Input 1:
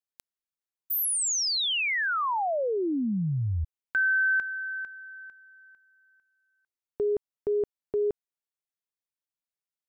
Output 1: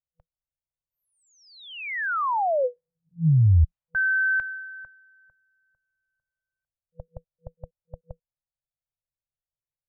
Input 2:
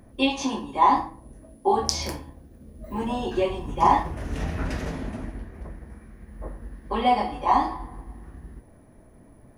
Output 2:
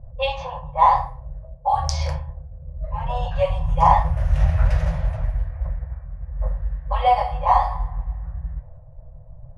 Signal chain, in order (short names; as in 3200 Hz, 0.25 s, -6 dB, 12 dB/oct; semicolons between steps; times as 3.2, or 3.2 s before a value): tilt -2.5 dB/oct; FFT band-reject 170–490 Hz; low-pass opened by the level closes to 510 Hz, open at -19.5 dBFS; gain +3 dB